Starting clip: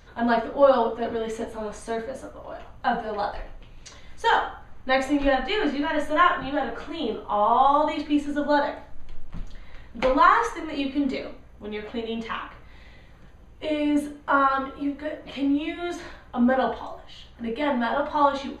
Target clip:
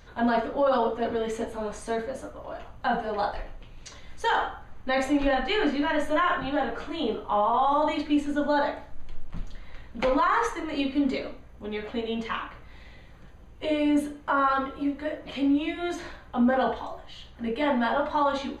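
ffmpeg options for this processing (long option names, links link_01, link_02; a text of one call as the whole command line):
ffmpeg -i in.wav -af "alimiter=limit=-15.5dB:level=0:latency=1:release=13" out.wav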